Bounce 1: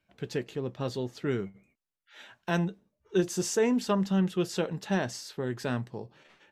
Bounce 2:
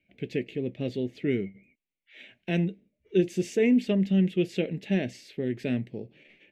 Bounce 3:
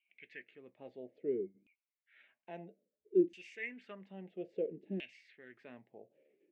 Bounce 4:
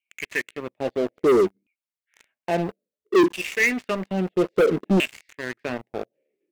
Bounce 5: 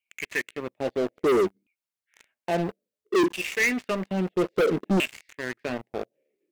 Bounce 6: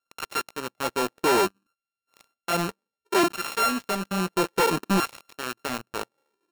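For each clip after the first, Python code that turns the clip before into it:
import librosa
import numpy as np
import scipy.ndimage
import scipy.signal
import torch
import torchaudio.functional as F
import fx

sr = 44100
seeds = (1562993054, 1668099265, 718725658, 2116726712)

y1 = fx.curve_eq(x, sr, hz=(130.0, 260.0, 640.0, 990.0, 1400.0, 2200.0, 5300.0), db=(0, 6, -2, -21, -16, 9, -11))
y2 = fx.filter_lfo_bandpass(y1, sr, shape='saw_down', hz=0.6, low_hz=270.0, high_hz=2900.0, q=5.0)
y2 = F.gain(torch.from_numpy(y2), -1.5).numpy()
y3 = fx.leveller(y2, sr, passes=5)
y3 = F.gain(torch.from_numpy(y3), 6.5).numpy()
y4 = 10.0 ** (-17.5 / 20.0) * np.tanh(y3 / 10.0 ** (-17.5 / 20.0))
y5 = np.r_[np.sort(y4[:len(y4) // 32 * 32].reshape(-1, 32), axis=1).ravel(), y4[len(y4) // 32 * 32:]]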